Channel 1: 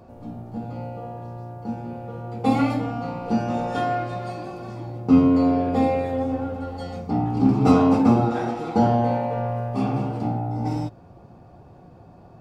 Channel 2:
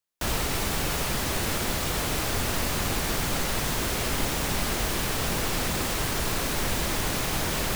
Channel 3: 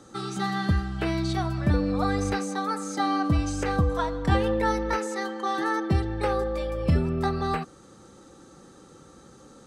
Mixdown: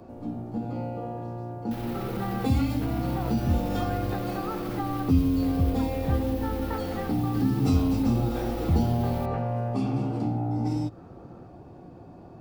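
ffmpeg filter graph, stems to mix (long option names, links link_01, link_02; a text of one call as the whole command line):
ffmpeg -i stem1.wav -i stem2.wav -i stem3.wav -filter_complex "[0:a]equalizer=frequency=310:width=1.8:gain=7.5,volume=-1dB[link_01];[1:a]equalizer=frequency=7400:width=0.97:gain=-15,alimiter=limit=-23.5dB:level=0:latency=1,adelay=1500,volume=-7.5dB[link_02];[2:a]lowpass=1200,adelay=1800,volume=-0.5dB[link_03];[link_01][link_02][link_03]amix=inputs=3:normalize=0,acrossover=split=150|3000[link_04][link_05][link_06];[link_05]acompressor=threshold=-28dB:ratio=6[link_07];[link_04][link_07][link_06]amix=inputs=3:normalize=0" out.wav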